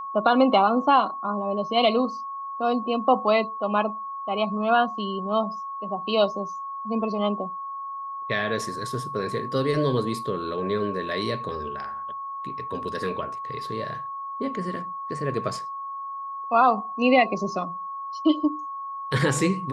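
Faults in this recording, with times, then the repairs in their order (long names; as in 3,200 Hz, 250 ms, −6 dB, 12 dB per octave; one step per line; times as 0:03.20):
whistle 1,100 Hz −31 dBFS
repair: notch filter 1,100 Hz, Q 30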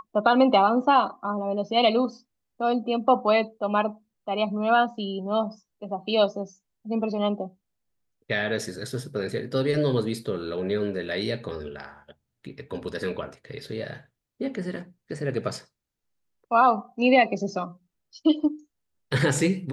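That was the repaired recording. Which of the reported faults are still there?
none of them is left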